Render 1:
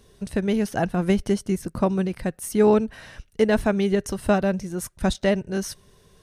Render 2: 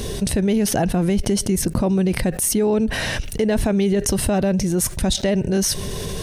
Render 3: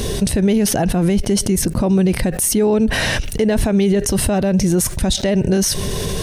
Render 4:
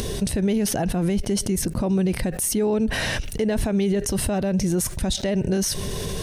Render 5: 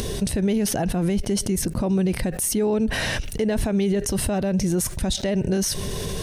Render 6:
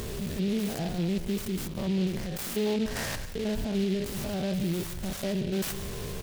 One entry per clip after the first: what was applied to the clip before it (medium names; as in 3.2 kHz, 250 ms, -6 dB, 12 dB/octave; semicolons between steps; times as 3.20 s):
peaking EQ 1.3 kHz -7 dB 0.94 oct; peak limiter -17 dBFS, peak gain reduction 10 dB; level flattener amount 70%; trim +5 dB
peak limiter -13.5 dBFS, peak gain reduction 7 dB; trim +5.5 dB
upward compressor, threshold -22 dBFS; trim -6.5 dB
no audible change
spectrogram pixelated in time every 100 ms; delay 174 ms -15 dB; delay time shaken by noise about 3 kHz, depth 0.077 ms; trim -6 dB